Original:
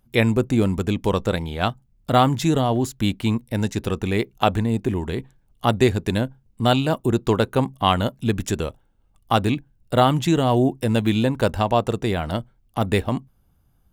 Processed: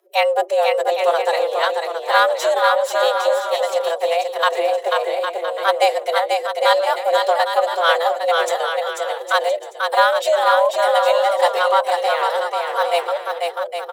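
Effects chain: formant-preserving pitch shift +9.5 st; frequency shift +340 Hz; bouncing-ball echo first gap 0.49 s, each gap 0.65×, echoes 5; gain +1.5 dB

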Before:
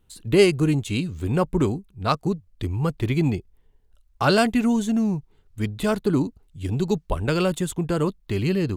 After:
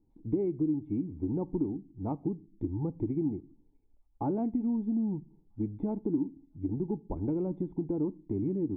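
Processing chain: vocal tract filter u; compressor 3:1, threshold -36 dBFS, peak gain reduction 12.5 dB; thin delay 0.646 s, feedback 49%, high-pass 3300 Hz, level -20 dB; on a send at -18 dB: reverb RT60 0.45 s, pre-delay 4 ms; on the sum: gain +6 dB

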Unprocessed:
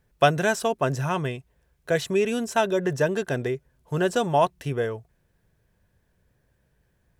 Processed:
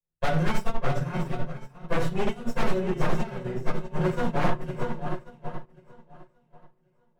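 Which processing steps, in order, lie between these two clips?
minimum comb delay 5.5 ms; in parallel at -5 dB: soft clip -18 dBFS, distortion -13 dB; on the sum: swung echo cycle 1.084 s, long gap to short 1.5:1, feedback 41%, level -7 dB; shoebox room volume 500 m³, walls furnished, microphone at 5.3 m; dynamic EQ 790 Hz, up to -3 dB, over -22 dBFS, Q 1.4; wavefolder -3.5 dBFS; high shelf 2900 Hz -8 dB; upward expander 2.5:1, over -25 dBFS; gain -8 dB

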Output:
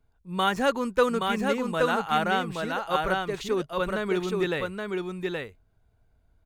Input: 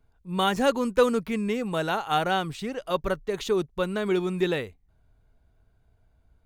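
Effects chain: dynamic EQ 1500 Hz, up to +5 dB, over -37 dBFS, Q 0.88; on a send: echo 0.823 s -3.5 dB; on the sum: gain -3 dB

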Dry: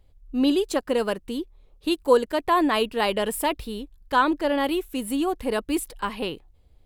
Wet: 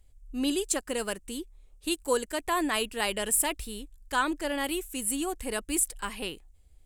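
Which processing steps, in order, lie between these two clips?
graphic EQ 125/250/500/1000/4000/8000 Hz -9/-5/-7/-7/-6/+12 dB

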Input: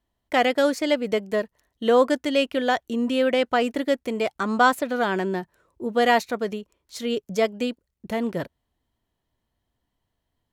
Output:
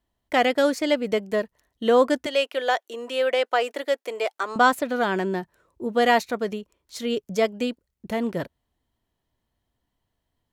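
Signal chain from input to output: 2.26–4.56 HPF 410 Hz 24 dB/oct

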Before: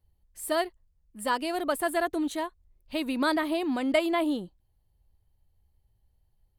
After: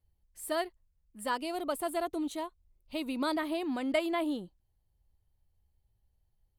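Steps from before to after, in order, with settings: 1.37–3.39 bell 1700 Hz -10.5 dB 0.29 oct; gain -5 dB

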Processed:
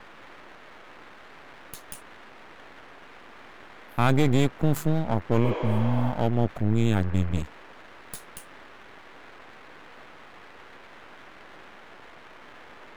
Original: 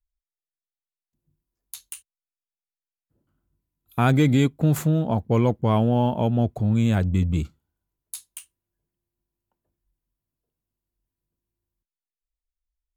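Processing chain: band noise 220–2000 Hz -44 dBFS; half-wave rectifier; spectral repair 5.47–6.08, 270–7500 Hz both

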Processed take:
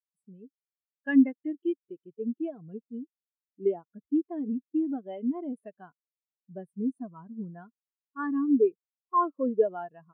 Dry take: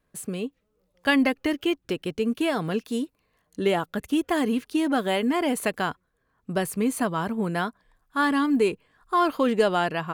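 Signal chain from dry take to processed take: spectral expander 2.5:1; gain -3.5 dB

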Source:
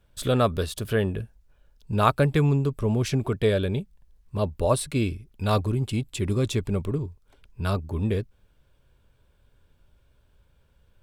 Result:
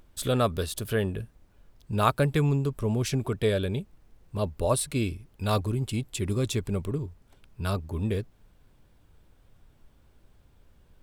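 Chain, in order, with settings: high shelf 5800 Hz +7 dB; added noise brown -54 dBFS; gain -3 dB

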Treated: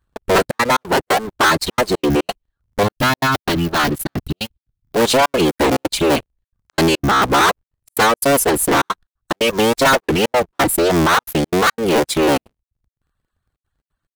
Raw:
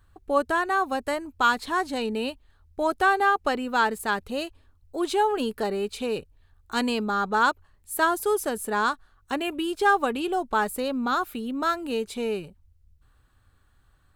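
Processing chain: cycle switcher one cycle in 3, inverted; reverb removal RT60 0.7 s; 2.83–4.96 ten-band EQ 125 Hz +3 dB, 500 Hz -11 dB, 1000 Hz -9 dB, 2000 Hz -7 dB, 8000 Hz -10 dB; sample leveller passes 5; step gate "xxxxxx.xx.xx.x" 177 bpm -60 dB

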